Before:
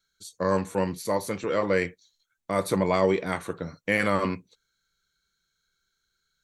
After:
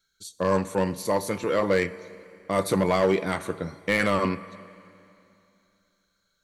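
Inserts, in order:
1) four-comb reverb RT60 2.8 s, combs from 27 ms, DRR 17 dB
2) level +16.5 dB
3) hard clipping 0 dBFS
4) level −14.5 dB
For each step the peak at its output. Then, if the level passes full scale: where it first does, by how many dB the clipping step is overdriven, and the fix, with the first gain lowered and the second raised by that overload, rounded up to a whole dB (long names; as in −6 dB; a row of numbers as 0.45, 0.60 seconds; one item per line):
−8.5, +8.0, 0.0, −14.5 dBFS
step 2, 8.0 dB
step 2 +8.5 dB, step 4 −6.5 dB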